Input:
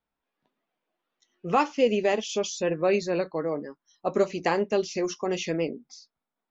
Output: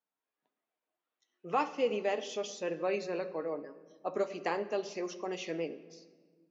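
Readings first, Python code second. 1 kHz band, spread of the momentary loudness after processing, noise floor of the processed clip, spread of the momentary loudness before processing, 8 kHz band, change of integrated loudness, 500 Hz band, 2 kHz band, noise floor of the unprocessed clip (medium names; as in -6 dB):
-7.0 dB, 10 LU, under -85 dBFS, 10 LU, no reading, -8.5 dB, -8.5 dB, -8.0 dB, under -85 dBFS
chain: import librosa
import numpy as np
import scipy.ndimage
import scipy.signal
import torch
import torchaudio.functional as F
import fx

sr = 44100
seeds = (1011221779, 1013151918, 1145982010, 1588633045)

y = scipy.signal.sosfilt(scipy.signal.bessel(2, 320.0, 'highpass', norm='mag', fs=sr, output='sos'), x)
y = fx.high_shelf(y, sr, hz=4700.0, db=-6.5)
y = fx.room_shoebox(y, sr, seeds[0], volume_m3=1700.0, walls='mixed', distance_m=0.5)
y = F.gain(torch.from_numpy(y), -7.0).numpy()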